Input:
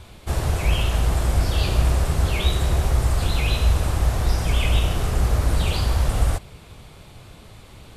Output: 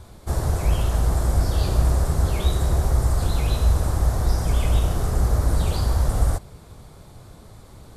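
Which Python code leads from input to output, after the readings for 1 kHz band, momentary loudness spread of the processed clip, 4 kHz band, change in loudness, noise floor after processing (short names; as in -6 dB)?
-1.0 dB, 2 LU, -7.0 dB, -0.5 dB, -46 dBFS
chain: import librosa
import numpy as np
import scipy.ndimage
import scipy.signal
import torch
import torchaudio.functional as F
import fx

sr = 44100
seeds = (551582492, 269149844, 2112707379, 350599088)

y = fx.peak_eq(x, sr, hz=2700.0, db=-12.5, octaves=0.95)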